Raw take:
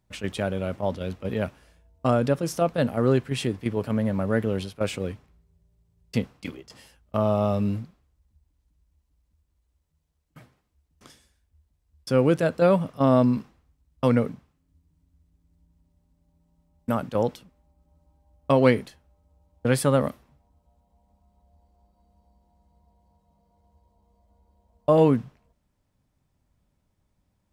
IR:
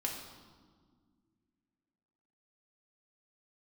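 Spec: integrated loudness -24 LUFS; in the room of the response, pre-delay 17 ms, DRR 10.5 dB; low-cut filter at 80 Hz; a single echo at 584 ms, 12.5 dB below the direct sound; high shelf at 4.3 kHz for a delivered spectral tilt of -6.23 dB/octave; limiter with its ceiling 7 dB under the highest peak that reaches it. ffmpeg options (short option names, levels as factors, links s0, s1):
-filter_complex "[0:a]highpass=80,highshelf=f=4300:g=6,alimiter=limit=0.251:level=0:latency=1,aecho=1:1:584:0.237,asplit=2[s0][s1];[1:a]atrim=start_sample=2205,adelay=17[s2];[s1][s2]afir=irnorm=-1:irlink=0,volume=0.237[s3];[s0][s3]amix=inputs=2:normalize=0,volume=1.33"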